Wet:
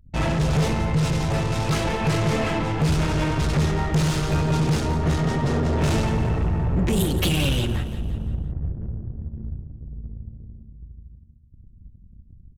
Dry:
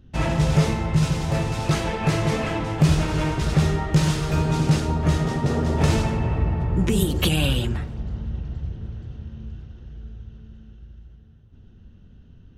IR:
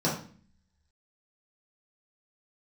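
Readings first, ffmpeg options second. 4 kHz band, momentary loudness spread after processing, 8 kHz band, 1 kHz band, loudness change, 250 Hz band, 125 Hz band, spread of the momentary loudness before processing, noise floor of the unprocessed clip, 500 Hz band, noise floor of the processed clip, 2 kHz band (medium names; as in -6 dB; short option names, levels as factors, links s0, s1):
0.0 dB, 13 LU, 0.0 dB, +0.5 dB, -0.5 dB, -0.5 dB, -0.5 dB, 17 LU, -49 dBFS, +0.5 dB, -49 dBFS, +0.5 dB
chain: -filter_complex "[0:a]asoftclip=type=tanh:threshold=0.106,aeval=exprs='0.106*(cos(1*acos(clip(val(0)/0.106,-1,1)))-cos(1*PI/2))+0.00668*(cos(6*acos(clip(val(0)/0.106,-1,1)))-cos(6*PI/2))':c=same,anlmdn=0.398,asplit=2[s0][s1];[s1]aecho=0:1:172|344|516|688|860:0.224|0.114|0.0582|0.0297|0.0151[s2];[s0][s2]amix=inputs=2:normalize=0,volume=1.41"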